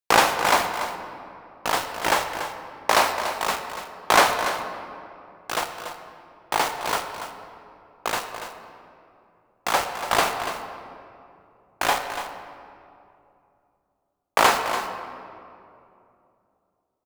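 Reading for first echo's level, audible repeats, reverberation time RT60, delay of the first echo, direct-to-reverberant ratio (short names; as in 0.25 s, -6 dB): -10.5 dB, 1, 2.7 s, 0.287 s, 5.0 dB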